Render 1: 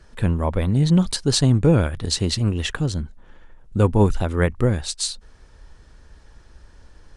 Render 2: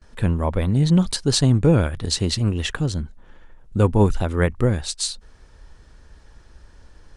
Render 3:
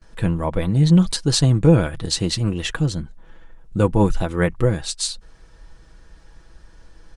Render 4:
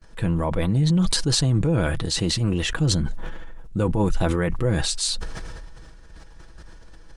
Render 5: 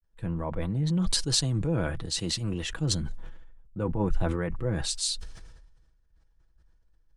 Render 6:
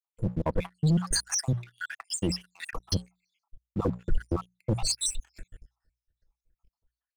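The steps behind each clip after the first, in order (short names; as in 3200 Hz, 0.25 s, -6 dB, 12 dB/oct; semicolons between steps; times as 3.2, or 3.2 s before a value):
gate with hold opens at -42 dBFS
comb 6.1 ms, depth 47%
limiter -11.5 dBFS, peak gain reduction 9 dB; sustainer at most 23 dB/s; gain -1.5 dB
three-band expander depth 70%; gain -7.5 dB
random spectral dropouts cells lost 77%; notches 60/120/180 Hz; sample leveller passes 2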